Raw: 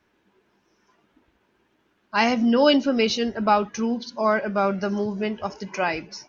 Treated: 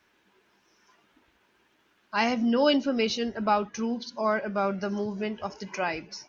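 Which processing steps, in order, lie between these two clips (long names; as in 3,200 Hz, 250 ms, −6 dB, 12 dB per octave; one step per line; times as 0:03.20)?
one half of a high-frequency compander encoder only
level −5 dB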